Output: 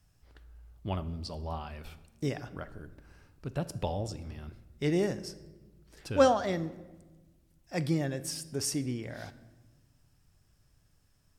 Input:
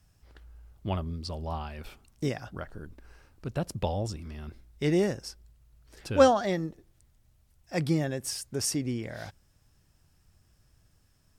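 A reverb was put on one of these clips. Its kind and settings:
rectangular room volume 730 cubic metres, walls mixed, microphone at 0.35 metres
level −3 dB

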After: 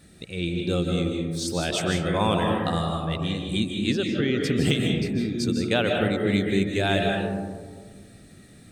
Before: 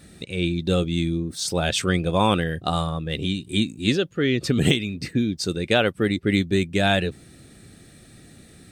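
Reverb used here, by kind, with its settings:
comb and all-pass reverb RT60 1.6 s, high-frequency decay 0.25×, pre-delay 115 ms, DRR 1 dB
level −4.5 dB

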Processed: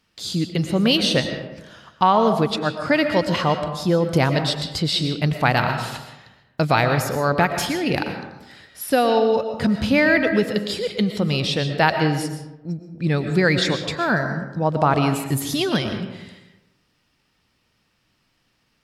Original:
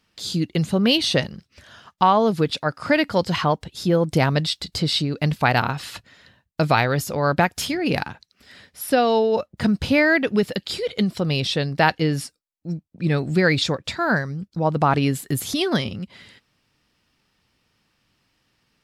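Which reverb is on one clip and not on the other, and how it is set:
comb and all-pass reverb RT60 0.99 s, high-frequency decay 0.5×, pre-delay 80 ms, DRR 6.5 dB

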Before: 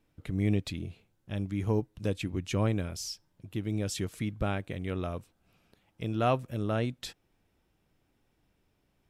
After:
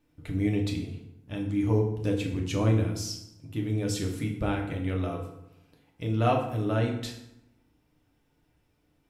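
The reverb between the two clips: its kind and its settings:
feedback delay network reverb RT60 0.83 s, low-frequency decay 1.25×, high-frequency decay 0.7×, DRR −0.5 dB
level −1 dB

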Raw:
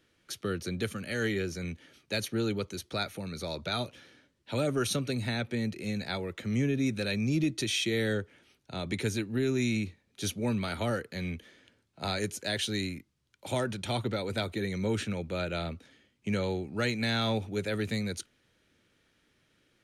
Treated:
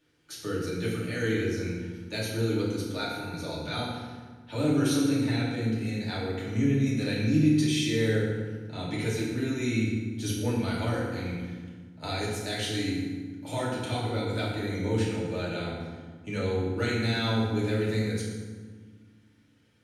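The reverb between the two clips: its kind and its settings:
feedback delay network reverb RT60 1.5 s, low-frequency decay 1.55×, high-frequency decay 0.65×, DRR −7 dB
level −6.5 dB

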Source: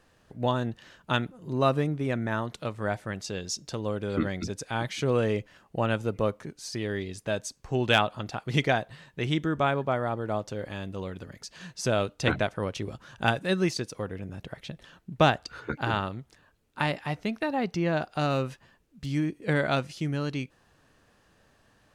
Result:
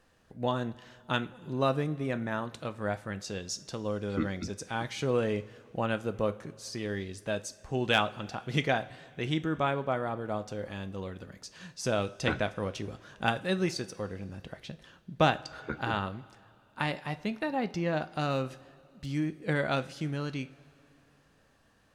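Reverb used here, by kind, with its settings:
coupled-rooms reverb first 0.35 s, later 3 s, from −18 dB, DRR 10.5 dB
level −3.5 dB

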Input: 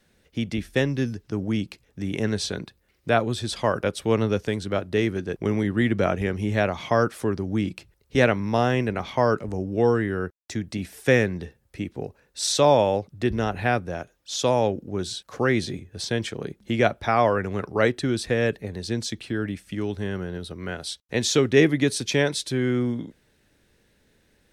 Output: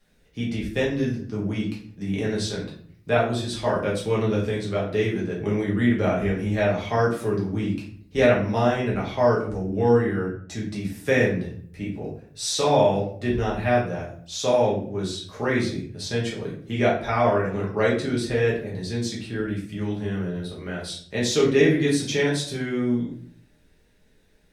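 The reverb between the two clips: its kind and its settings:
rectangular room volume 63 cubic metres, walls mixed, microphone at 1.3 metres
level −7 dB

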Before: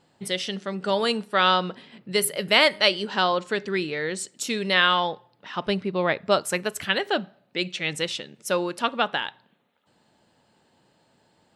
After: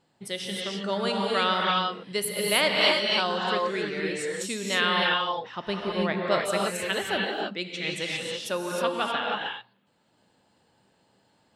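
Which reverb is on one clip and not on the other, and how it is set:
reverb whose tail is shaped and stops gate 340 ms rising, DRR −2 dB
level −6 dB

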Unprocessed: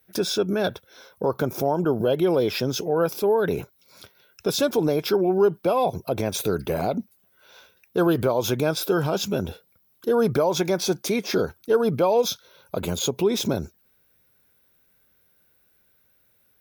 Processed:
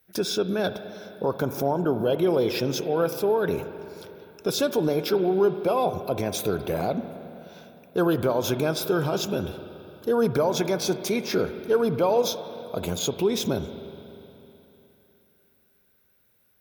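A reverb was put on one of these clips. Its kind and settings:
spring reverb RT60 3.2 s, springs 43/51 ms, chirp 55 ms, DRR 10 dB
level −2 dB

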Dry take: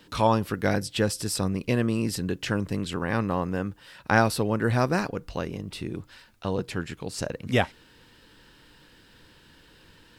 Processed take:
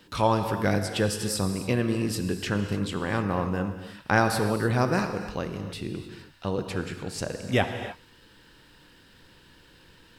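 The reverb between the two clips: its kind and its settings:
reverb whose tail is shaped and stops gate 330 ms flat, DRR 6.5 dB
level −1 dB

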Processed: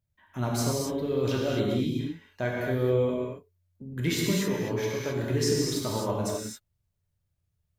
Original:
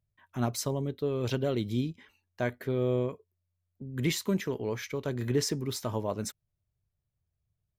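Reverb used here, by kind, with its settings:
reverb whose tail is shaped and stops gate 290 ms flat, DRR −3.5 dB
level −1 dB

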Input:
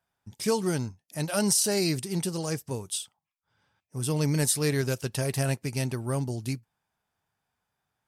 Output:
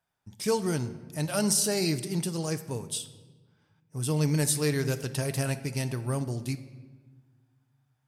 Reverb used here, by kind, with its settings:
rectangular room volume 1,100 cubic metres, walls mixed, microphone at 0.47 metres
level −1.5 dB

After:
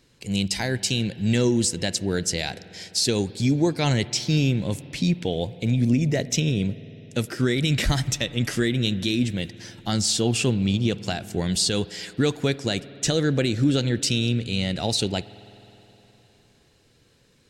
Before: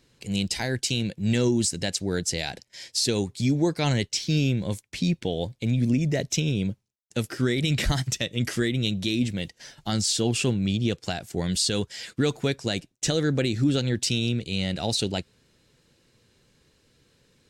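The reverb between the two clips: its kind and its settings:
spring reverb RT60 3.7 s, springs 51 ms, chirp 40 ms, DRR 16.5 dB
level +2 dB

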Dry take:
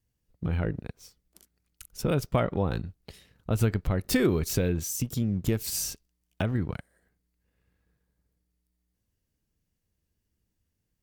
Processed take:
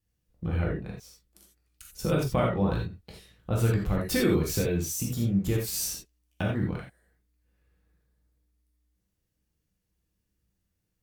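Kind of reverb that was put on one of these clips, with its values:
reverb whose tail is shaped and stops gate 110 ms flat, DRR −2.5 dB
level −3.5 dB

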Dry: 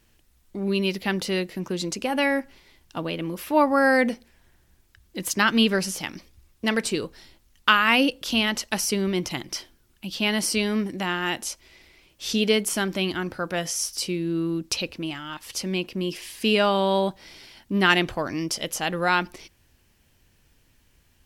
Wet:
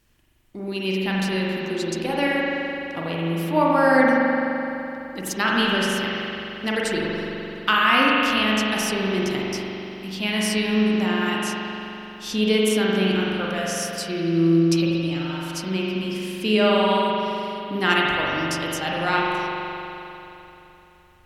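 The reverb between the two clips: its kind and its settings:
spring reverb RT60 3.3 s, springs 42 ms, chirp 50 ms, DRR −4.5 dB
level −3 dB

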